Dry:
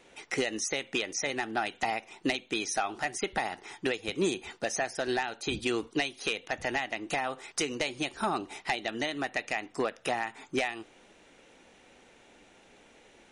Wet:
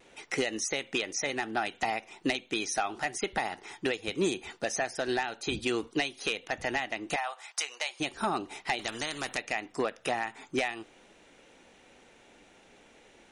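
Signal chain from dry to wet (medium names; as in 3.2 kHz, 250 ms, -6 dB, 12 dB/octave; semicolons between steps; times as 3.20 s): 7.16–8.00 s: Chebyshev high-pass 740 Hz, order 3; vibrato 0.37 Hz 9.8 cents; 8.79–9.38 s: spectrum-flattening compressor 2:1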